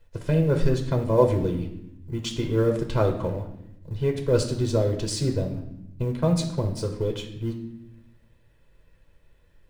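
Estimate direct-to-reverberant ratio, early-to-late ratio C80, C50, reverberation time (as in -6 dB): 2.5 dB, 11.5 dB, 8.5 dB, 0.80 s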